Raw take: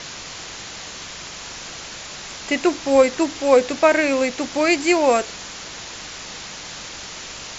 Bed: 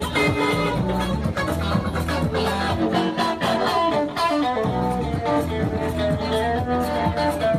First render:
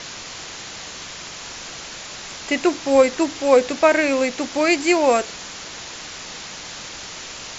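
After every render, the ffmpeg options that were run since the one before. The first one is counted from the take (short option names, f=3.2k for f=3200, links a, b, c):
-af "bandreject=f=50:t=h:w=4,bandreject=f=100:t=h:w=4,bandreject=f=150:t=h:w=4,bandreject=f=200:t=h:w=4"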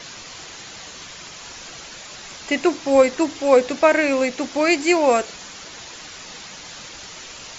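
-af "afftdn=nr=6:nf=-36"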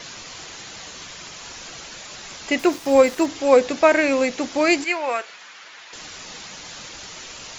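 -filter_complex "[0:a]asettb=1/sr,asplit=3[a][b][c];[a]atrim=end=2.594[d];[b]atrim=start=2.59:end=3.26,asetpts=PTS-STARTPTS,afade=t=in:d=0.004:c=qsin,afade=t=out:st=0.666:d=0.004:c=qsin,aeval=exprs='val(0)*gte(abs(val(0)),0.0178)':c=same[e];[c]atrim=start=3.256[f];[d][e]acrossfade=d=0.004:c1=hsin:c2=qsin[g];[g][f]acrossfade=d=0.004:c1=qsin:c2=hsin,asettb=1/sr,asplit=3[h][i][j];[h]atrim=end=4.844[k];[i]atrim=start=4.84:end=5.93,asetpts=PTS-STARTPTS,afade=t=in:d=0.004:c=qsin,afade=t=out:st=1.086:d=0.004:c=qsin,bandpass=f=1.8k:t=q:w=0.96[l];[j]atrim=start=5.926[m];[k][l]acrossfade=d=0.004:c1=hsin:c2=qsin[n];[n][m]acrossfade=d=0.004:c1=qsin:c2=hsin"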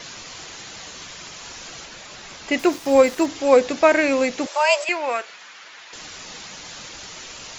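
-filter_complex "[0:a]asettb=1/sr,asplit=3[a][b][c];[a]atrim=end=1.854[d];[b]atrim=start=1.85:end=2.54,asetpts=PTS-STARTPTS,afade=t=in:d=0.004:c=qsin,afade=t=out:st=0.686:d=0.004:c=qsin,highshelf=f=5.1k:g=-6[e];[c]atrim=start=2.536[f];[d][e]acrossfade=d=0.004:c1=hsin:c2=qsin[g];[g][f]acrossfade=d=0.004:c1=qsin:c2=hsin,asettb=1/sr,asplit=3[h][i][j];[h]atrim=end=4.464[k];[i]atrim=start=4.46:end=4.89,asetpts=PTS-STARTPTS,afade=t=in:d=0.004:c=qsin,afade=t=out:st=0.426:d=0.004:c=qsin,afreqshift=300[l];[j]atrim=start=4.886[m];[k][l]acrossfade=d=0.004:c1=hsin:c2=qsin[n];[n][m]acrossfade=d=0.004:c1=qsin:c2=hsin"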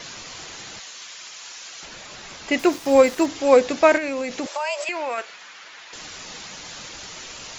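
-filter_complex "[0:a]asettb=1/sr,asplit=3[a][b][c];[a]atrim=end=0.794[d];[b]atrim=start=0.79:end=1.83,asetpts=PTS-STARTPTS,afade=t=in:d=0.004:c=qsin,afade=t=out:st=1.036:d=0.004:c=qsin,highpass=f=1.5k:p=1[e];[c]atrim=start=1.826[f];[d][e]acrossfade=d=0.004:c1=hsin:c2=qsin[g];[g][f]acrossfade=d=0.004:c1=qsin:c2=hsin,asettb=1/sr,asplit=3[h][i][j];[h]atrim=end=3.974[k];[i]atrim=start=3.97:end=5.18,asetpts=PTS-STARTPTS,afade=t=in:d=0.004:c=qsin,afade=t=out:st=1.206:d=0.004:c=qsin,acompressor=threshold=-22dB:ratio=10:attack=3.2:release=140:knee=1:detection=peak[l];[j]atrim=start=5.176[m];[k][l]acrossfade=d=0.004:c1=hsin:c2=qsin[n];[n][m]acrossfade=d=0.004:c1=qsin:c2=hsin"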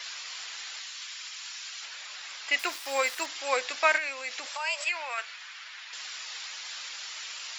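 -af "highpass=1.4k,equalizer=f=6.4k:t=o:w=0.2:g=-7"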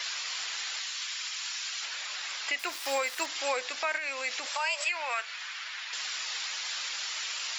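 -filter_complex "[0:a]asplit=2[a][b];[b]acompressor=threshold=-37dB:ratio=6,volume=-2dB[c];[a][c]amix=inputs=2:normalize=0,alimiter=limit=-19.5dB:level=0:latency=1:release=199"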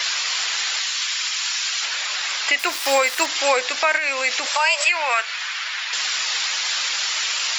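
-af "volume=12dB"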